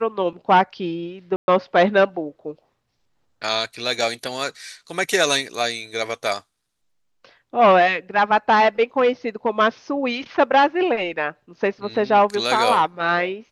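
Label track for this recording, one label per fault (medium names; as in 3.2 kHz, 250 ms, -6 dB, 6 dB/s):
1.360000	1.480000	dropout 120 ms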